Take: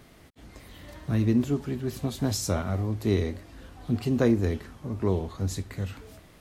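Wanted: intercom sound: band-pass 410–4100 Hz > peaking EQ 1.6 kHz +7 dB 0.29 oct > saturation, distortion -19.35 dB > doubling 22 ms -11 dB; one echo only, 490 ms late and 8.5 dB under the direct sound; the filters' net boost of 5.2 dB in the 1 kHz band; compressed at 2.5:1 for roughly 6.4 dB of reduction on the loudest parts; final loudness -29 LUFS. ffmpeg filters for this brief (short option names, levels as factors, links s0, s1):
-filter_complex "[0:a]equalizer=f=1000:t=o:g=6.5,acompressor=threshold=0.0447:ratio=2.5,highpass=410,lowpass=4100,equalizer=f=1600:t=o:w=0.29:g=7,aecho=1:1:490:0.376,asoftclip=threshold=0.0596,asplit=2[s0][s1];[s1]adelay=22,volume=0.282[s2];[s0][s2]amix=inputs=2:normalize=0,volume=2.99"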